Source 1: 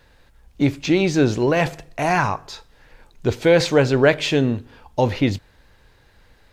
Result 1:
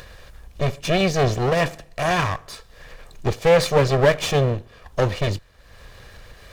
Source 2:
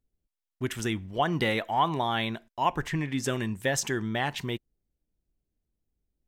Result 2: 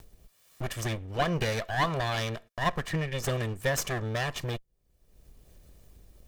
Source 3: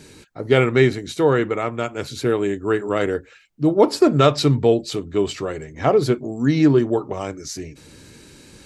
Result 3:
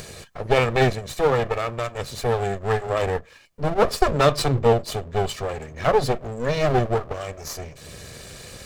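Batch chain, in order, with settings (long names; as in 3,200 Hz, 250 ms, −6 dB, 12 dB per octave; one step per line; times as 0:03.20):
lower of the sound and its delayed copy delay 1.7 ms
upward compression, threshold −31 dBFS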